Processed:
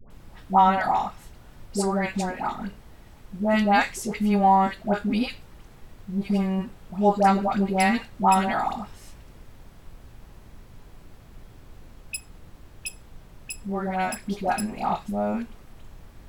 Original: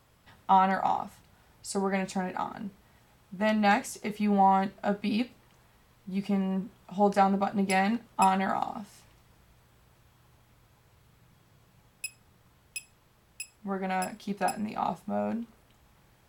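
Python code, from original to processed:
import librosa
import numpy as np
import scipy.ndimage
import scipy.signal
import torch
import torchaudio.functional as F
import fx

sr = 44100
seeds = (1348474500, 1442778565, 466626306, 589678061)

y = fx.dmg_noise_colour(x, sr, seeds[0], colour='brown', level_db=-49.0)
y = fx.dispersion(y, sr, late='highs', ms=104.0, hz=890.0)
y = y * librosa.db_to_amplitude(4.5)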